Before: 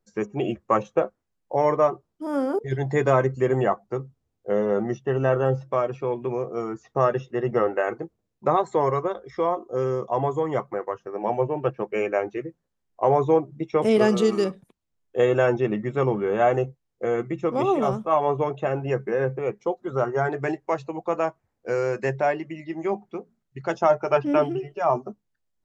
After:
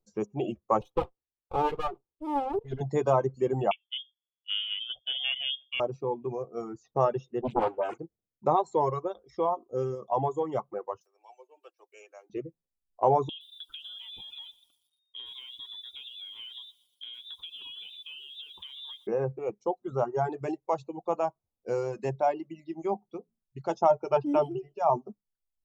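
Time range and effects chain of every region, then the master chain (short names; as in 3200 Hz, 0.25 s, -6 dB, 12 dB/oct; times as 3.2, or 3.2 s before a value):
0.81–2.81 minimum comb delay 2.4 ms + resonant high shelf 4000 Hz -6.5 dB, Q 1.5
3.71–5.8 half-wave gain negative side -3 dB + inverted band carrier 3400 Hz + mismatched tape noise reduction decoder only
7.41–7.98 dispersion highs, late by 65 ms, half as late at 1300 Hz + Doppler distortion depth 0.9 ms
11.01–12.3 steep high-pass 320 Hz 48 dB/oct + differentiator + upward compressor, threshold -51 dBFS
13.29–19.07 compressor 20:1, threshold -31 dBFS + inverted band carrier 3700 Hz + lo-fi delay 0.119 s, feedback 55%, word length 9-bit, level -12 dB
whole clip: bell 1800 Hz -13.5 dB 0.8 oct; reverb removal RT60 1.5 s; dynamic EQ 870 Hz, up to +7 dB, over -40 dBFS, Q 2.8; gain -4 dB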